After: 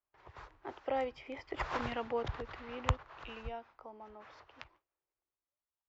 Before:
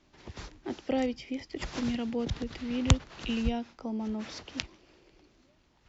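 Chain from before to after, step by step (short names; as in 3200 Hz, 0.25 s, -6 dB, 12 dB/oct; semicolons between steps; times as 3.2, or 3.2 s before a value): Doppler pass-by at 1.81, 6 m/s, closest 3.3 m; gate with hold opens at -59 dBFS; EQ curve 130 Hz 0 dB, 210 Hz -13 dB, 400 Hz +2 dB, 1100 Hz +13 dB, 6000 Hz -10 dB; gain -3 dB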